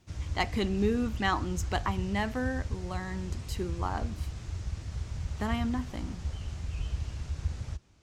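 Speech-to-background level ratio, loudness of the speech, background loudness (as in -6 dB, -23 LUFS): 4.0 dB, -33.5 LUFS, -37.5 LUFS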